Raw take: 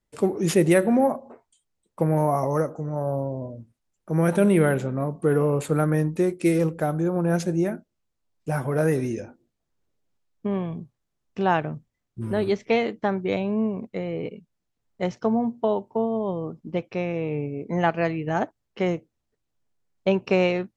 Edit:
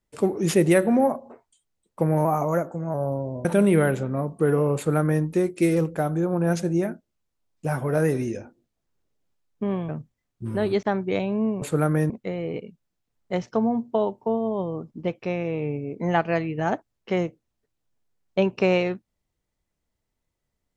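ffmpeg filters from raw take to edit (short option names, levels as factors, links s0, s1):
-filter_complex "[0:a]asplit=8[s0][s1][s2][s3][s4][s5][s6][s7];[s0]atrim=end=2.254[s8];[s1]atrim=start=2.25:end=3,asetpts=PTS-STARTPTS,asetrate=48069,aresample=44100,atrim=end_sample=30344,asetpts=PTS-STARTPTS[s9];[s2]atrim=start=2.996:end=3.512[s10];[s3]atrim=start=4.278:end=10.722[s11];[s4]atrim=start=11.648:end=12.592[s12];[s5]atrim=start=12.998:end=13.792[s13];[s6]atrim=start=5.588:end=6.072[s14];[s7]atrim=start=13.788[s15];[s8][s9]acrossfade=d=0.004:c1=hsin:c2=hsin[s16];[s16][s10]acrossfade=d=0.004:c1=hsin:c2=hsin[s17];[s17][s11]acrossfade=d=0.004:c1=hsin:c2=hsin[s18];[s18][s12]acrossfade=d=0.004:c1=hsin:c2=hsin[s19];[s19][s13]acrossfade=d=0.004:c1=hsin:c2=hsin[s20];[s20][s14]acrossfade=d=0.004:c1=hsin:c2=hsin[s21];[s21][s15]acrossfade=d=0.004:c1=hsin:c2=hsin"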